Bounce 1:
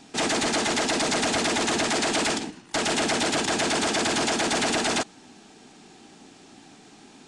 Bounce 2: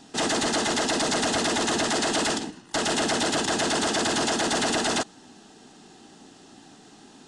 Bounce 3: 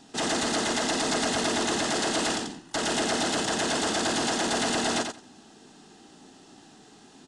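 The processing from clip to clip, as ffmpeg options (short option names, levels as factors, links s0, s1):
-af "bandreject=f=2300:w=5.4"
-af "aecho=1:1:88|176|264:0.501|0.0752|0.0113,volume=0.708"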